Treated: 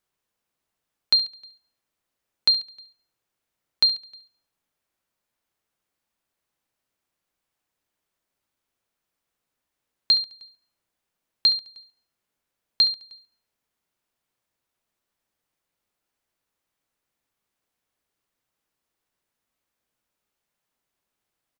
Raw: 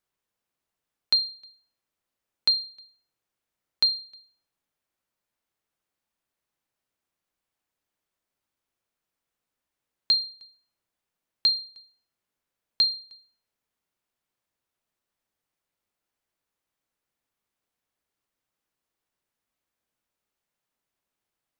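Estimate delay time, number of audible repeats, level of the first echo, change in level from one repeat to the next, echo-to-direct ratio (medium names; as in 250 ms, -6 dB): 70 ms, 3, -14.5 dB, -9.0 dB, -14.0 dB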